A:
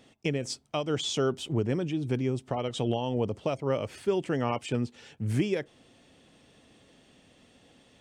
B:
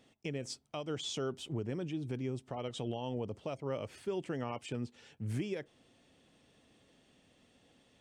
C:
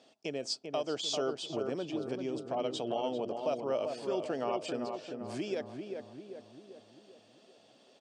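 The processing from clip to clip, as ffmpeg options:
-af "alimiter=limit=-19.5dB:level=0:latency=1:release=114,volume=-7.5dB"
-filter_complex "[0:a]highpass=290,equalizer=f=650:t=q:w=4:g=8,equalizer=f=2k:t=q:w=4:g=-7,equalizer=f=4.7k:t=q:w=4:g=8,lowpass=f=8.5k:w=0.5412,lowpass=f=8.5k:w=1.3066,asplit=2[a][b];[b]adelay=393,lowpass=f=1.6k:p=1,volume=-5dB,asplit=2[c][d];[d]adelay=393,lowpass=f=1.6k:p=1,volume=0.54,asplit=2[e][f];[f]adelay=393,lowpass=f=1.6k:p=1,volume=0.54,asplit=2[g][h];[h]adelay=393,lowpass=f=1.6k:p=1,volume=0.54,asplit=2[i][j];[j]adelay=393,lowpass=f=1.6k:p=1,volume=0.54,asplit=2[k][l];[l]adelay=393,lowpass=f=1.6k:p=1,volume=0.54,asplit=2[m][n];[n]adelay=393,lowpass=f=1.6k:p=1,volume=0.54[o];[a][c][e][g][i][k][m][o]amix=inputs=8:normalize=0,volume=3.5dB"

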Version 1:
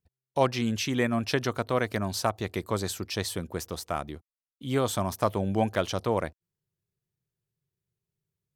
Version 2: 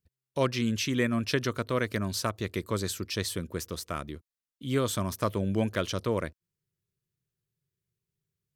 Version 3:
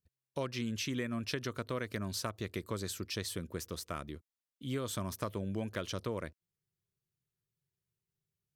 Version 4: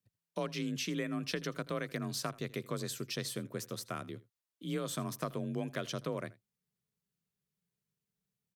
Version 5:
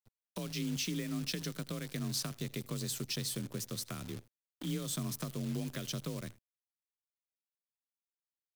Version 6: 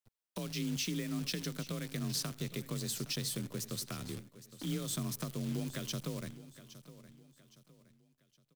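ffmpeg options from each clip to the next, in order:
-af "equalizer=f=780:t=o:w=0.45:g=-14.5"
-af "acompressor=threshold=-28dB:ratio=6,volume=-4.5dB"
-af "afreqshift=35,aecho=1:1:81:0.0891"
-filter_complex "[0:a]asplit=2[a][b];[b]acompressor=threshold=-44dB:ratio=6,volume=2dB[c];[a][c]amix=inputs=2:normalize=0,acrusher=bits=8:dc=4:mix=0:aa=0.000001,acrossover=split=280|3000[d][e][f];[e]acompressor=threshold=-48dB:ratio=4[g];[d][g][f]amix=inputs=3:normalize=0"
-af "aecho=1:1:815|1630|2445:0.168|0.0638|0.0242"

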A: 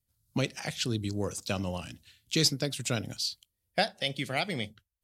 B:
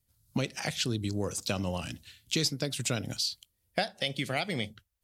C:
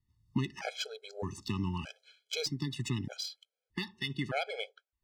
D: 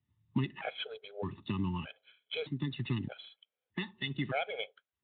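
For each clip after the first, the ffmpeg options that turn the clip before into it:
-af "acompressor=threshold=-35dB:ratio=2.5,volume=5.5dB"
-af "adynamicsmooth=sensitivity=2:basefreq=3.9k,afftfilt=real='re*gt(sin(2*PI*0.81*pts/sr)*(1-2*mod(floor(b*sr/1024/430),2)),0)':imag='im*gt(sin(2*PI*0.81*pts/sr)*(1-2*mod(floor(b*sr/1024/430),2)),0)':win_size=1024:overlap=0.75"
-ar 8000 -c:a libspeex -b:a 24k

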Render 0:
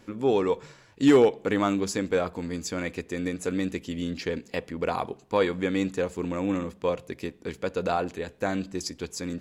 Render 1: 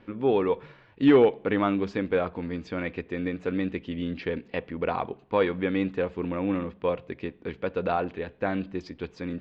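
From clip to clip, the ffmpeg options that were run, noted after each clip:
-af "lowpass=f=3.3k:w=0.5412,lowpass=f=3.3k:w=1.3066"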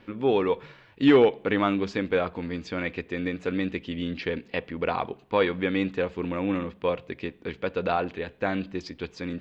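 -af "highshelf=f=2.6k:g=9"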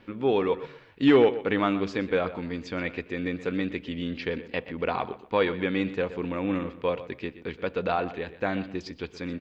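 -filter_complex "[0:a]asplit=2[a][b];[b]adelay=123,lowpass=f=3.9k:p=1,volume=-14dB,asplit=2[c][d];[d]adelay=123,lowpass=f=3.9k:p=1,volume=0.26,asplit=2[e][f];[f]adelay=123,lowpass=f=3.9k:p=1,volume=0.26[g];[a][c][e][g]amix=inputs=4:normalize=0,volume=-1dB"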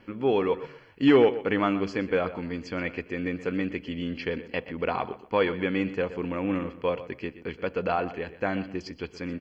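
-af "asuperstop=centerf=3700:order=12:qfactor=6.7"

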